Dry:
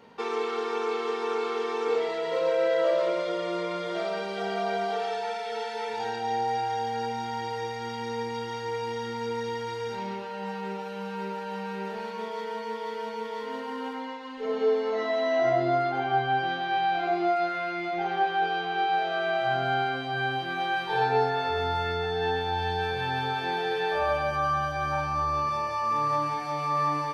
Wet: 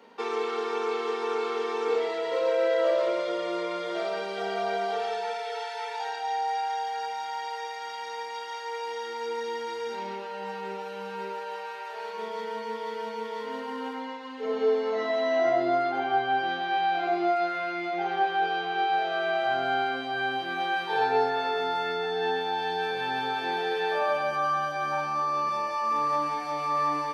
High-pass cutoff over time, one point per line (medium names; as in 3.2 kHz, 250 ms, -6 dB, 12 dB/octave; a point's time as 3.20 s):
high-pass 24 dB/octave
5.25 s 230 Hz
5.65 s 560 Hz
8.61 s 560 Hz
9.77 s 240 Hz
11.20 s 240 Hz
11.87 s 640 Hz
12.34 s 190 Hz